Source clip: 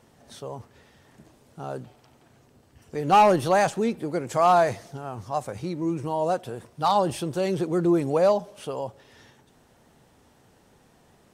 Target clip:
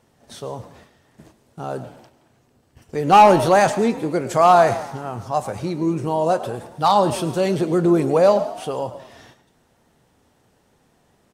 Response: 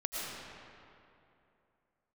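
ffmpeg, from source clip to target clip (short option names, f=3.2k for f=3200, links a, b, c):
-filter_complex "[0:a]asplit=6[a][b][c][d][e][f];[b]adelay=106,afreqshift=47,volume=-16.5dB[g];[c]adelay=212,afreqshift=94,volume=-21.7dB[h];[d]adelay=318,afreqshift=141,volume=-26.9dB[i];[e]adelay=424,afreqshift=188,volume=-32.1dB[j];[f]adelay=530,afreqshift=235,volume=-37.3dB[k];[a][g][h][i][j][k]amix=inputs=6:normalize=0,agate=range=-8dB:threshold=-53dB:ratio=16:detection=peak,asplit=2[l][m];[1:a]atrim=start_sample=2205,atrim=end_sample=6174,adelay=25[n];[m][n]afir=irnorm=-1:irlink=0,volume=-13.5dB[o];[l][o]amix=inputs=2:normalize=0,volume=5.5dB"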